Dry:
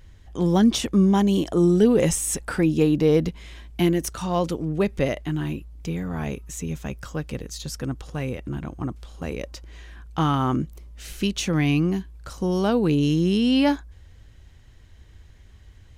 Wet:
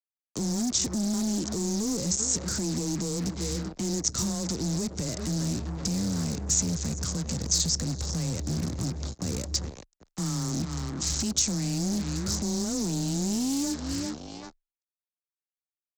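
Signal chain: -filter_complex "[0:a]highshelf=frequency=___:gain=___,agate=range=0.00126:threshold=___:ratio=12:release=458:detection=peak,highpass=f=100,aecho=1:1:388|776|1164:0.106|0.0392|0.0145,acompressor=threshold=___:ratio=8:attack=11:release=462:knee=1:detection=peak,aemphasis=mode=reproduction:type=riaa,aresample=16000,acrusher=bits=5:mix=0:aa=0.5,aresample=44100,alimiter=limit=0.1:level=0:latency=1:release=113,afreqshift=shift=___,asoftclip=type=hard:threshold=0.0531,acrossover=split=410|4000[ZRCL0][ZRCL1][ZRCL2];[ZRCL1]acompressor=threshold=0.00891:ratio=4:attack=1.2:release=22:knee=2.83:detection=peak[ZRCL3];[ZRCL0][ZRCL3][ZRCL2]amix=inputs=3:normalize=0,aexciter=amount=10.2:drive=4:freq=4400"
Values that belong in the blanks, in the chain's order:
2600, 6.5, 0.0158, 0.0501, 15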